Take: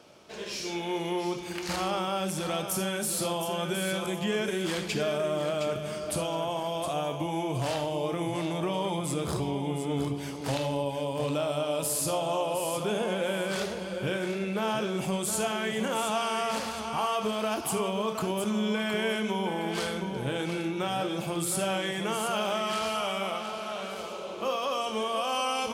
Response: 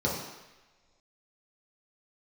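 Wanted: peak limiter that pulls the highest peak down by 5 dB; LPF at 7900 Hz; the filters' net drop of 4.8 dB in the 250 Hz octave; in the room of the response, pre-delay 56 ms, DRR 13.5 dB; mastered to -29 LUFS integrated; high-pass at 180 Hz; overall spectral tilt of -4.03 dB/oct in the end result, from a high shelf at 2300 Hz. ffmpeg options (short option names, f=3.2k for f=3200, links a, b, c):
-filter_complex "[0:a]highpass=180,lowpass=7.9k,equalizer=f=250:t=o:g=-5,highshelf=f=2.3k:g=-3,alimiter=limit=-23.5dB:level=0:latency=1,asplit=2[a][b];[1:a]atrim=start_sample=2205,adelay=56[c];[b][c]afir=irnorm=-1:irlink=0,volume=-23.5dB[d];[a][d]amix=inputs=2:normalize=0,volume=4dB"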